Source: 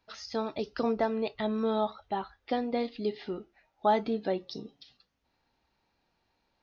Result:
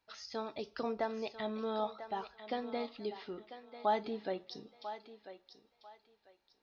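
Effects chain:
low-shelf EQ 360 Hz −6.5 dB
feedback echo with a high-pass in the loop 994 ms, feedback 26%, high-pass 460 Hz, level −10.5 dB
on a send at −20.5 dB: convolution reverb, pre-delay 3 ms
on the sum: level −5 dB

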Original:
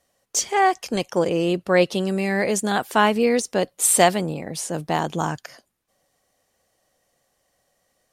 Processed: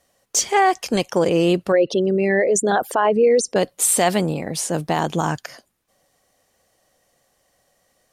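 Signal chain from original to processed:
0:01.72–0:03.56: spectral envelope exaggerated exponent 2
boost into a limiter +11.5 dB
level −7 dB

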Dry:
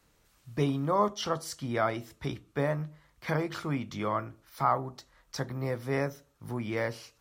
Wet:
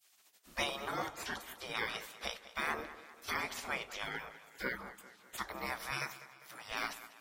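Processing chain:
0:05.90–0:06.72: high-pass filter 420 Hz 12 dB per octave
gate on every frequency bin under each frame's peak −20 dB weak
tape delay 199 ms, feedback 56%, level −14 dB, low-pass 5,100 Hz
level +7 dB

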